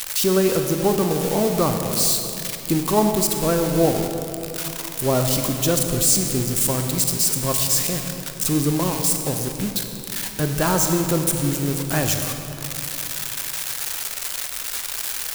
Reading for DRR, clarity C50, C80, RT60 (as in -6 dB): 4.5 dB, 5.0 dB, 6.0 dB, 3.0 s